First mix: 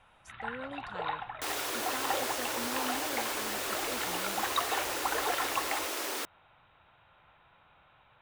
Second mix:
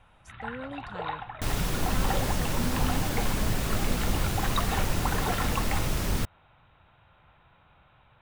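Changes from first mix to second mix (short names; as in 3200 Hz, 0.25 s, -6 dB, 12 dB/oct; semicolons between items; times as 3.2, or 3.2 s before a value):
second sound: remove steep high-pass 290 Hz 48 dB/oct; master: add low shelf 250 Hz +10.5 dB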